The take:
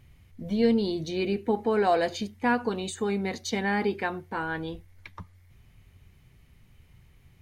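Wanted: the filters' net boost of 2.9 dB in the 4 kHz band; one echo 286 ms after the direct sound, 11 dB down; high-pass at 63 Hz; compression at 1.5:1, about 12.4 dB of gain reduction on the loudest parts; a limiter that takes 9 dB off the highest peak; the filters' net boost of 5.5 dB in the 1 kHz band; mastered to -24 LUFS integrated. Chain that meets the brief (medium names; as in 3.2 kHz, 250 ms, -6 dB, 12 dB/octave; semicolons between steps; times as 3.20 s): high-pass 63 Hz; peaking EQ 1 kHz +7.5 dB; peaking EQ 4 kHz +3 dB; compression 1.5:1, threshold -51 dBFS; peak limiter -29.5 dBFS; delay 286 ms -11 dB; trim +15.5 dB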